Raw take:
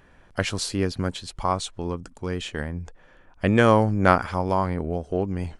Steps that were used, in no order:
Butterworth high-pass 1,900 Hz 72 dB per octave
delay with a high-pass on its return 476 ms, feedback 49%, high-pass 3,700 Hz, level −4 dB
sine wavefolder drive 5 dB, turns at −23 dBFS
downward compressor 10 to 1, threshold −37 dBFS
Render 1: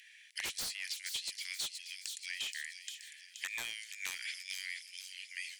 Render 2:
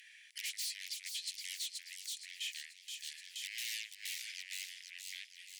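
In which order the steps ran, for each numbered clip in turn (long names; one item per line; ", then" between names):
Butterworth high-pass, then sine wavefolder, then downward compressor, then delay with a high-pass on its return
sine wavefolder, then delay with a high-pass on its return, then downward compressor, then Butterworth high-pass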